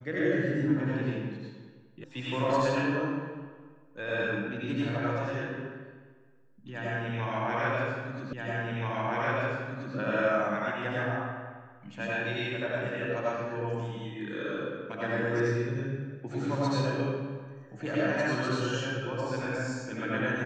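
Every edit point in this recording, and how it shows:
0:02.04: cut off before it has died away
0:08.33: the same again, the last 1.63 s

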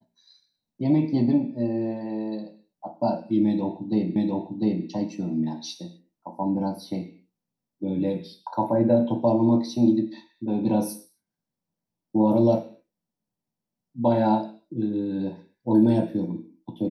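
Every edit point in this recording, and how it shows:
0:04.16: the same again, the last 0.7 s

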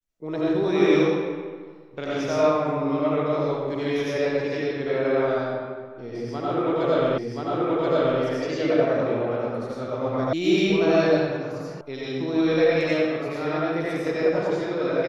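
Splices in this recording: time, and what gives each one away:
0:07.18: the same again, the last 1.03 s
0:10.33: cut off before it has died away
0:11.81: cut off before it has died away

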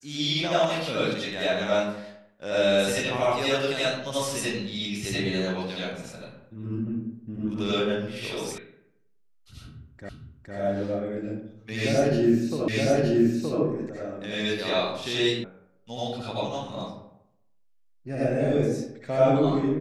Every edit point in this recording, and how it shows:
0:08.58: cut off before it has died away
0:10.09: the same again, the last 0.46 s
0:12.68: the same again, the last 0.92 s
0:15.44: cut off before it has died away

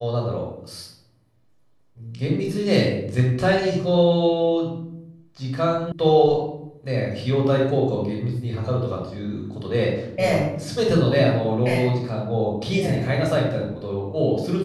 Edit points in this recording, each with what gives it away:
0:05.92: cut off before it has died away

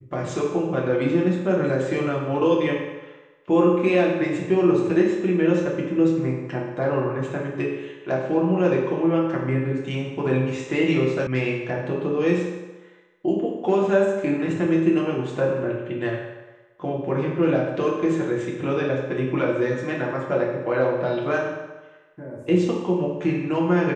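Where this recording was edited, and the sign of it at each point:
0:11.27: cut off before it has died away

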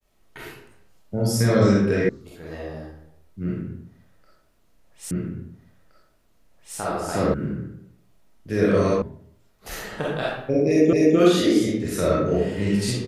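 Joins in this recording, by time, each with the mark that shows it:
0:02.09: cut off before it has died away
0:05.11: the same again, the last 1.67 s
0:07.34: cut off before it has died away
0:09.02: cut off before it has died away
0:10.93: the same again, the last 0.25 s

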